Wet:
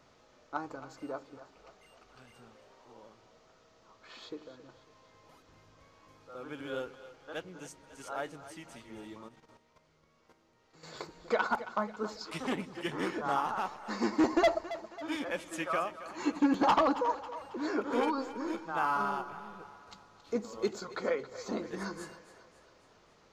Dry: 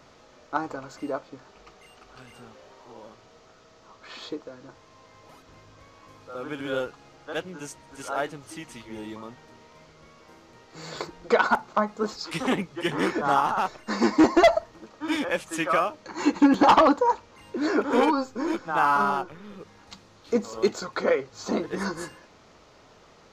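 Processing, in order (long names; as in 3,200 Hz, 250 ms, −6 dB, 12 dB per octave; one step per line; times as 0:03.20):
echo with a time of its own for lows and highs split 420 Hz, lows 89 ms, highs 273 ms, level −14 dB
0:09.27–0:10.94: output level in coarse steps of 10 dB
level −9 dB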